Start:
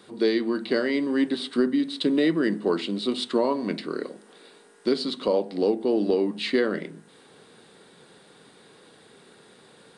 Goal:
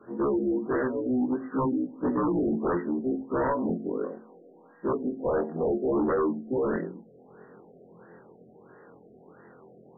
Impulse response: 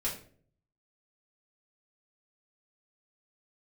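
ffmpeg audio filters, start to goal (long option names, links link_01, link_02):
-af "afftfilt=real='re':imag='-im':win_size=2048:overlap=0.75,aeval=exprs='0.2*sin(PI/2*3.16*val(0)/0.2)':channel_layout=same,afftfilt=real='re*lt(b*sr/1024,730*pow(2000/730,0.5+0.5*sin(2*PI*1.5*pts/sr)))':imag='im*lt(b*sr/1024,730*pow(2000/730,0.5+0.5*sin(2*PI*1.5*pts/sr)))':win_size=1024:overlap=0.75,volume=-7.5dB"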